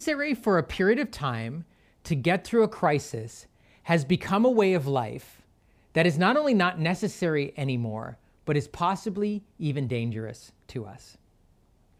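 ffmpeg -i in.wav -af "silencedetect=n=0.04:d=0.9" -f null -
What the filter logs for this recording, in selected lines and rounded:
silence_start: 10.83
silence_end: 11.99 | silence_duration: 1.16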